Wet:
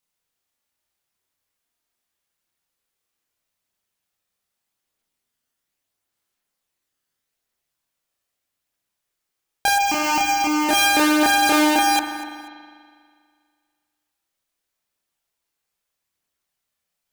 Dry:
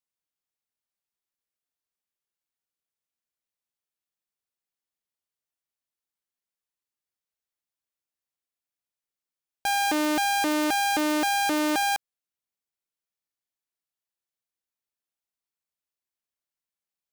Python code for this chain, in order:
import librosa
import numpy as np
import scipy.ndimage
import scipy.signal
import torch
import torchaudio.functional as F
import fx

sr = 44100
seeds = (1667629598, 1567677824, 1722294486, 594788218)

p1 = fx.chorus_voices(x, sr, voices=2, hz=0.4, base_ms=29, depth_ms=1.8, mix_pct=50)
p2 = fx.over_compress(p1, sr, threshold_db=-31.0, ratio=-1.0)
p3 = p1 + F.gain(torch.from_numpy(p2), 0.5).numpy()
p4 = fx.fixed_phaser(p3, sr, hz=2500.0, stages=8, at=(9.78, 10.69))
p5 = p4 + fx.echo_feedback(p4, sr, ms=244, feedback_pct=27, wet_db=-17.5, dry=0)
p6 = fx.rev_spring(p5, sr, rt60_s=2.0, pass_ms=(40,), chirp_ms=40, drr_db=5.5)
y = F.gain(torch.from_numpy(p6), 6.0).numpy()